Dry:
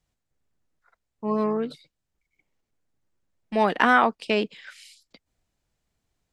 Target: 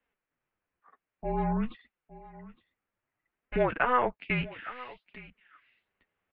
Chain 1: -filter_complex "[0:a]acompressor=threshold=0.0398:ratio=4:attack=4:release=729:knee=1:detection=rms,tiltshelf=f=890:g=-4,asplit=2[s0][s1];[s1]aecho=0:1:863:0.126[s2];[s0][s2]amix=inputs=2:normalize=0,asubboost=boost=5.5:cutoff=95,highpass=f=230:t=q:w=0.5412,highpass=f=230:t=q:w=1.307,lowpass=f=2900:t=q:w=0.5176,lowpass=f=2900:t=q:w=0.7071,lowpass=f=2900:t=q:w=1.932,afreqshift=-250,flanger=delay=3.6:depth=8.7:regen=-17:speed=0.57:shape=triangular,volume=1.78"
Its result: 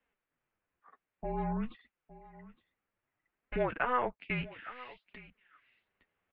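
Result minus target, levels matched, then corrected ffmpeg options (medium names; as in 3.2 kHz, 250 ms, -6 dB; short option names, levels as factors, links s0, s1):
compression: peak gain reduction +5 dB
-filter_complex "[0:a]acompressor=threshold=0.0891:ratio=4:attack=4:release=729:knee=1:detection=rms,tiltshelf=f=890:g=-4,asplit=2[s0][s1];[s1]aecho=0:1:863:0.126[s2];[s0][s2]amix=inputs=2:normalize=0,asubboost=boost=5.5:cutoff=95,highpass=f=230:t=q:w=0.5412,highpass=f=230:t=q:w=1.307,lowpass=f=2900:t=q:w=0.5176,lowpass=f=2900:t=q:w=0.7071,lowpass=f=2900:t=q:w=1.932,afreqshift=-250,flanger=delay=3.6:depth=8.7:regen=-17:speed=0.57:shape=triangular,volume=1.78"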